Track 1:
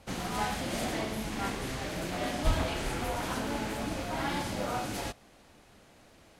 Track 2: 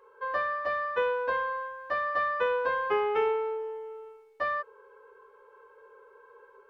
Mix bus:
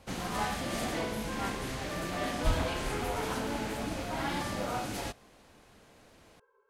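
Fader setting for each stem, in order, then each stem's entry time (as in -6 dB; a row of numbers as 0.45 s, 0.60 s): -1.0 dB, -14.0 dB; 0.00 s, 0.00 s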